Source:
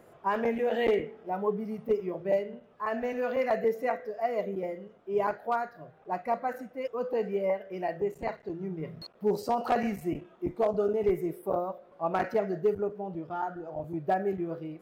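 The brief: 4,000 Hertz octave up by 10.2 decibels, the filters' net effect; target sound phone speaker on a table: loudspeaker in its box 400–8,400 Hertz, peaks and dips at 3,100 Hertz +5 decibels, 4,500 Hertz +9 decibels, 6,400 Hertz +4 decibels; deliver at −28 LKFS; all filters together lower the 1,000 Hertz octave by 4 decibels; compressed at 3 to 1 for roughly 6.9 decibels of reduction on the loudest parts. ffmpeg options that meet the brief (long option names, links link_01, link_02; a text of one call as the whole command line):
ffmpeg -i in.wav -af "equalizer=frequency=1000:width_type=o:gain=-6.5,equalizer=frequency=4000:width_type=o:gain=6,acompressor=threshold=-32dB:ratio=3,highpass=frequency=400:width=0.5412,highpass=frequency=400:width=1.3066,equalizer=frequency=3100:width_type=q:width=4:gain=5,equalizer=frequency=4500:width_type=q:width=4:gain=9,equalizer=frequency=6400:width_type=q:width=4:gain=4,lowpass=frequency=8400:width=0.5412,lowpass=frequency=8400:width=1.3066,volume=10.5dB" out.wav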